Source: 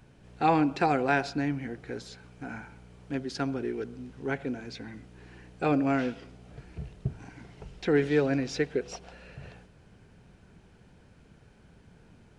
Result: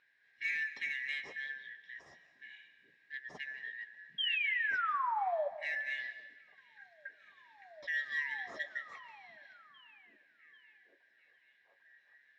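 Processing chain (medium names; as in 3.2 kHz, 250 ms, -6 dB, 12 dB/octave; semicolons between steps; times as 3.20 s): four frequency bands reordered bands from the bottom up 4123; low-pass 5.5 kHz 12 dB/octave; treble shelf 2.6 kHz -8.5 dB; comb of notches 1.5 kHz; in parallel at -12 dB: hard clipper -26.5 dBFS, distortion -12 dB; on the sum: painted sound fall, 4.18–5.48 s, 560–3300 Hz -23 dBFS; flange 0.3 Hz, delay 6.6 ms, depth 8.3 ms, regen -49%; on a send: repeats whose band climbs or falls 794 ms, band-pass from 160 Hz, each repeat 0.7 oct, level -9.5 dB; on the sum: algorithmic reverb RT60 1.1 s, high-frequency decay 0.95×, pre-delay 115 ms, DRR 14.5 dB; trim -6.5 dB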